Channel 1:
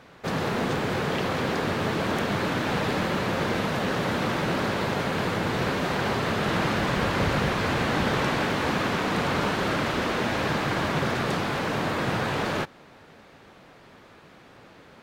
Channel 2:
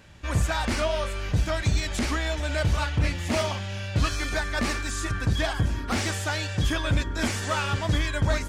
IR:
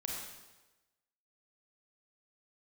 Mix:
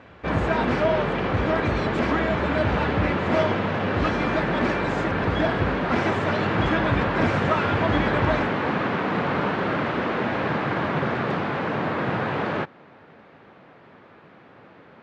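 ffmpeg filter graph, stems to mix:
-filter_complex "[0:a]volume=2dB[a];[1:a]aecho=1:1:3:0.65,volume=1dB[b];[a][b]amix=inputs=2:normalize=0,highpass=100,lowpass=2.3k"

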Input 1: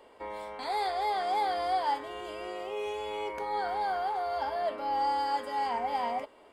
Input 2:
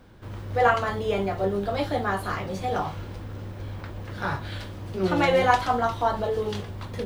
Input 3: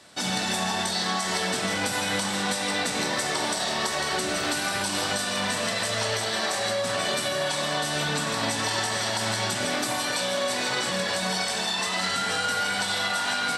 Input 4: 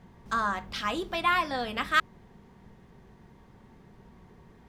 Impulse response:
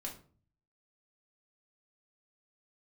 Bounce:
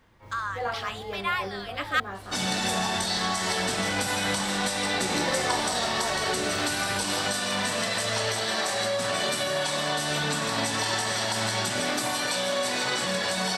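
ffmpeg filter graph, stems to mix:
-filter_complex "[0:a]highpass=f=970:p=1,volume=-10dB[a];[1:a]volume=-11dB[b];[2:a]adelay=2150,volume=-0.5dB[c];[3:a]highpass=f=1.1k:w=0.5412,highpass=f=1.1k:w=1.3066,volume=-1dB[d];[a][b][c][d]amix=inputs=4:normalize=0"

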